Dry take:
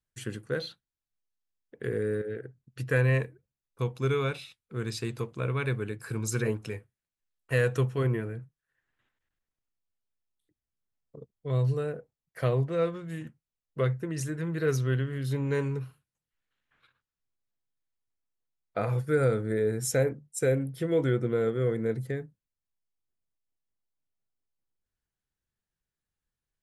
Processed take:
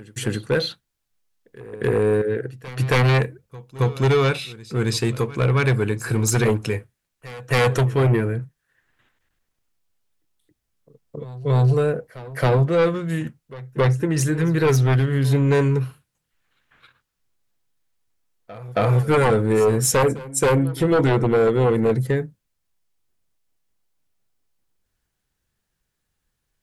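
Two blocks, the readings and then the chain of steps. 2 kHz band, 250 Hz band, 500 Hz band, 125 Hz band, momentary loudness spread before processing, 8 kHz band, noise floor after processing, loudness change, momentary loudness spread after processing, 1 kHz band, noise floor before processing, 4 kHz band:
+9.0 dB, +10.5 dB, +9.0 dB, +10.0 dB, 14 LU, +11.5 dB, −78 dBFS, +9.5 dB, 12 LU, +14.5 dB, below −85 dBFS, +13.0 dB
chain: sine wavefolder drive 9 dB, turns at −13 dBFS
echo ahead of the sound 272 ms −19 dB

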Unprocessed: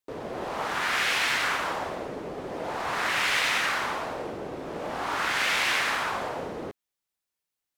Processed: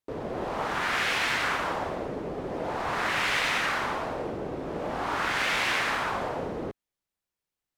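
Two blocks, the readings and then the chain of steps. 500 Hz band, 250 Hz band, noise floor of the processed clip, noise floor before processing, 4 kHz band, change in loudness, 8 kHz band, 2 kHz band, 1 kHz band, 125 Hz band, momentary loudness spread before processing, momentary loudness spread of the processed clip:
+1.5 dB, +3.0 dB, below −85 dBFS, below −85 dBFS, −2.5 dB, −1.0 dB, −4.0 dB, −1.5 dB, 0.0 dB, +4.5 dB, 13 LU, 10 LU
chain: spectral tilt −1.5 dB per octave

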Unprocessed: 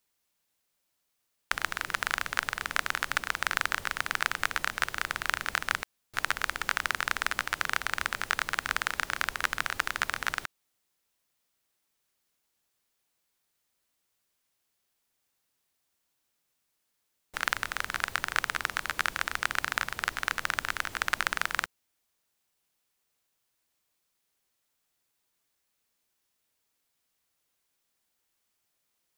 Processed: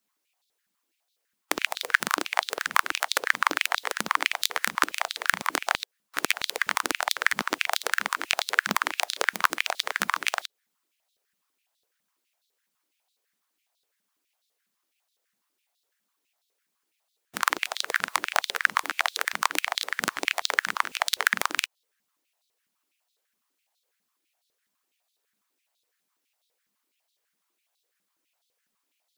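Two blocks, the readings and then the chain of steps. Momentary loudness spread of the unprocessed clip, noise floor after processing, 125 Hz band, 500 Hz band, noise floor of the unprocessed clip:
3 LU, −80 dBFS, −3.5 dB, +8.5 dB, −79 dBFS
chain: sub-harmonics by changed cycles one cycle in 2, inverted
harmonic and percussive parts rebalanced percussive +9 dB
high-pass on a step sequencer 12 Hz 200–3,800 Hz
level −7 dB

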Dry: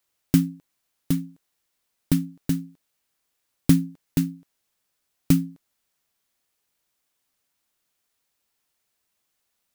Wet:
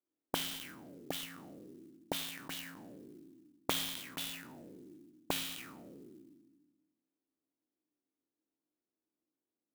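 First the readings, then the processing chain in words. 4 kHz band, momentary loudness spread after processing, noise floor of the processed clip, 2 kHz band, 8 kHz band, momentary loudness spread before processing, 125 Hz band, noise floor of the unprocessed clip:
+3.0 dB, 19 LU, below −85 dBFS, 0.0 dB, −5.5 dB, 10 LU, −27.0 dB, −77 dBFS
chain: peak hold with a decay on every bin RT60 1.38 s
envelope filter 300–3,400 Hz, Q 5.6, up, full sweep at −16.5 dBFS
converter with an unsteady clock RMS 0.04 ms
level +4.5 dB

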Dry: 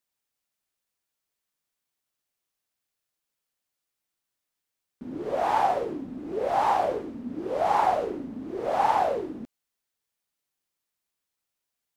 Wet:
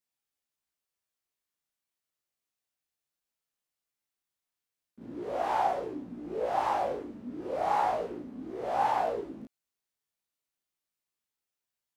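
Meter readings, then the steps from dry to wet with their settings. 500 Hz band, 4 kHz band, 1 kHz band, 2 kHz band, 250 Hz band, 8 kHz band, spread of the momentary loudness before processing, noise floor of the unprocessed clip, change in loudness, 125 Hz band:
−5.0 dB, −5.0 dB, −5.0 dB, −4.5 dB, −5.5 dB, can't be measured, 13 LU, −85 dBFS, −5.0 dB, −5.0 dB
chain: backwards echo 34 ms −4 dB
chorus effect 0.35 Hz, delay 16 ms, depth 3.9 ms
level −3.5 dB

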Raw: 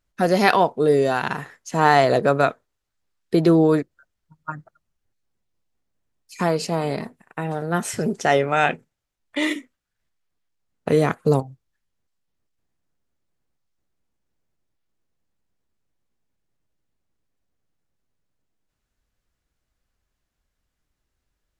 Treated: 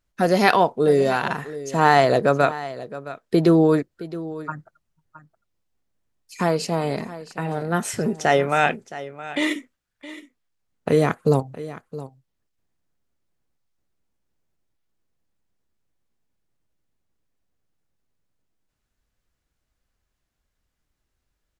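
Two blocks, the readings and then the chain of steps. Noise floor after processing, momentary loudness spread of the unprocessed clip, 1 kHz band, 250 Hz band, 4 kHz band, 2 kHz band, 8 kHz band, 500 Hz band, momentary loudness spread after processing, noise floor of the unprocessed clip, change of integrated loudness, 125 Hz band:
−78 dBFS, 19 LU, 0.0 dB, 0.0 dB, 0.0 dB, 0.0 dB, 0.0 dB, 0.0 dB, 19 LU, −79 dBFS, −0.5 dB, 0.0 dB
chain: single-tap delay 667 ms −15.5 dB

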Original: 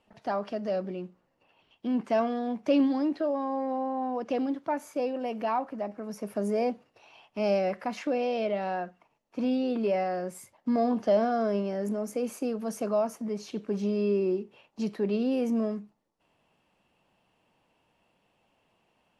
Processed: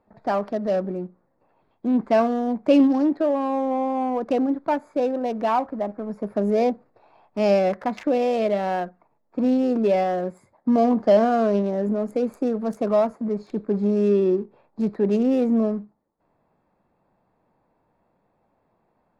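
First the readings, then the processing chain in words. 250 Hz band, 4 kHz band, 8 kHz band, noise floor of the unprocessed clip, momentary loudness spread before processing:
+7.5 dB, +3.5 dB, can't be measured, −72 dBFS, 10 LU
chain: adaptive Wiener filter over 15 samples
in parallel at −7.5 dB: slack as between gear wheels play −39.5 dBFS
on the sum: level +4.5 dB

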